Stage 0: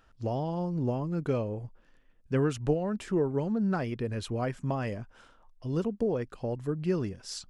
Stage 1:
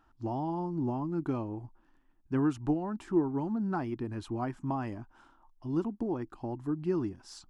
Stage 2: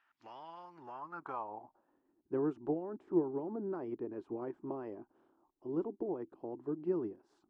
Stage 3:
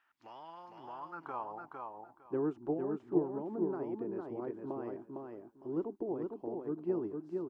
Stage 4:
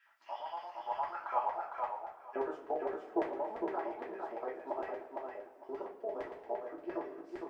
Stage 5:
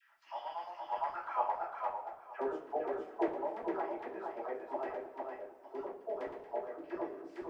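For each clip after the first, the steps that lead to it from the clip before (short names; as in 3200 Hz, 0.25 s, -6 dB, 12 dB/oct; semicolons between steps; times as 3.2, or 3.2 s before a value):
de-esser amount 80%; EQ curve 200 Hz 0 dB, 330 Hz +11 dB, 480 Hz -11 dB, 850 Hz +9 dB, 2100 Hz -4 dB; gain -5 dB
spectral limiter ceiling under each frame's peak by 14 dB; band-pass sweep 2100 Hz -> 380 Hz, 0.71–2.15
feedback echo 0.456 s, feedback 18%, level -4 dB
LFO high-pass square 8.7 Hz 610–2000 Hz; reverb, pre-delay 3 ms, DRR -6 dB; gain -2 dB
dispersion lows, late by 66 ms, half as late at 700 Hz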